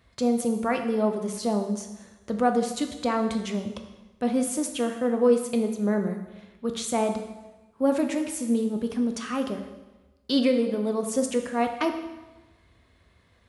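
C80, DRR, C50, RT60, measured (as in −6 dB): 10.0 dB, 5.0 dB, 8.0 dB, 1.1 s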